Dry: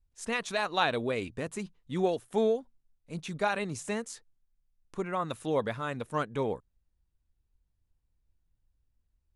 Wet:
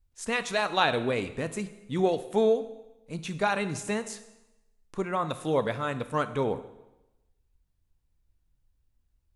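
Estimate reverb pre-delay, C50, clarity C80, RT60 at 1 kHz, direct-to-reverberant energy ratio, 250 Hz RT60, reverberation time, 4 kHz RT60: 5 ms, 13.0 dB, 15.0 dB, 1.0 s, 10.5 dB, 1.0 s, 0.95 s, 0.90 s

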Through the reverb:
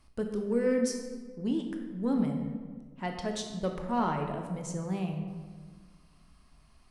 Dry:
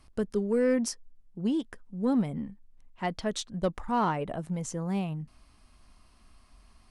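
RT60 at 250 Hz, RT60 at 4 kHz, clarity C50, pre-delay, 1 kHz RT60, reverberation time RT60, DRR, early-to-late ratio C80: 2.0 s, 0.95 s, 5.0 dB, 17 ms, 1.4 s, 1.5 s, 3.0 dB, 7.0 dB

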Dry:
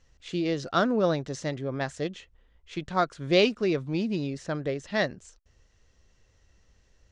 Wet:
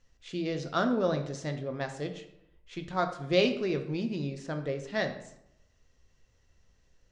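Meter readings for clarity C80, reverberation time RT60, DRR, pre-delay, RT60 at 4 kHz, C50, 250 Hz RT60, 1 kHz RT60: 12.5 dB, 0.80 s, 5.5 dB, 4 ms, 0.55 s, 10.0 dB, 0.85 s, 0.80 s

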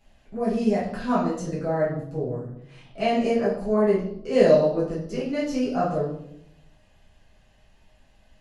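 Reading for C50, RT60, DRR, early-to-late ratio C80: 4.0 dB, 0.75 s, -9.0 dB, 8.5 dB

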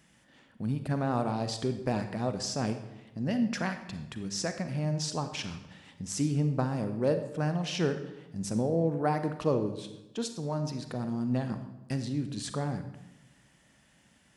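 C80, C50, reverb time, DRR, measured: 11.5 dB, 9.0 dB, 0.95 s, 8.0 dB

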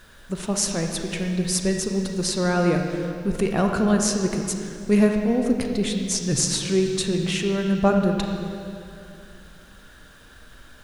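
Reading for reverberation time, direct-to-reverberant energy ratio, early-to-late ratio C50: 2.5 s, 3.0 dB, 3.5 dB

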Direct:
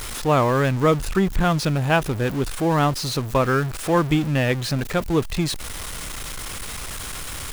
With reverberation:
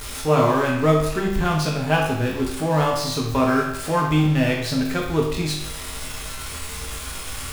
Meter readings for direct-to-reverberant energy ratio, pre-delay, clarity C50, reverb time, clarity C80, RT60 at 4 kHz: -2.5 dB, 5 ms, 3.0 dB, 0.80 s, 6.5 dB, 0.70 s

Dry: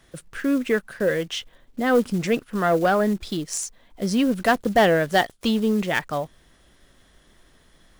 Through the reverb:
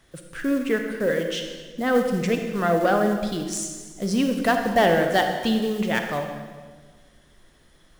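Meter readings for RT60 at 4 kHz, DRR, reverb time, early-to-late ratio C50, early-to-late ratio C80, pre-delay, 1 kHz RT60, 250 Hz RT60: 1.3 s, 4.5 dB, 1.5 s, 5.0 dB, 6.5 dB, 35 ms, 1.4 s, 2.0 s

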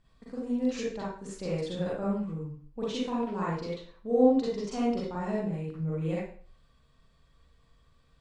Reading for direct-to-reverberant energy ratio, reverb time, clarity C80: -7.5 dB, 0.50 s, 5.0 dB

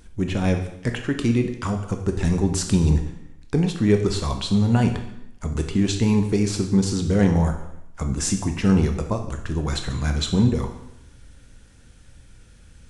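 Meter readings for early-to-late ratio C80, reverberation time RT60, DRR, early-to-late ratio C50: 11.0 dB, 0.80 s, 5.0 dB, 8.0 dB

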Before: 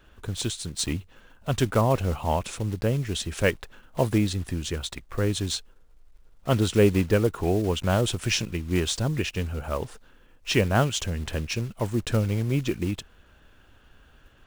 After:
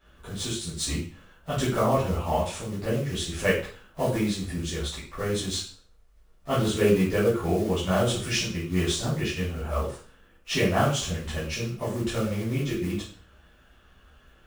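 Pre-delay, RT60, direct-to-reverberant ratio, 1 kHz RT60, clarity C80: 5 ms, 0.45 s, -10.5 dB, 0.45 s, 9.5 dB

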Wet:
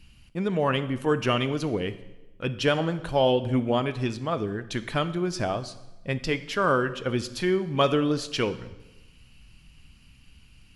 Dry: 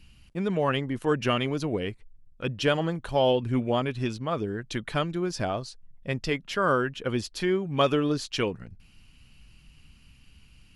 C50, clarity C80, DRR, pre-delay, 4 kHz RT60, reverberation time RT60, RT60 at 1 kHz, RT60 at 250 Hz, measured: 14.5 dB, 16.5 dB, 12.0 dB, 14 ms, 0.95 s, 1.1 s, 1.0 s, 1.2 s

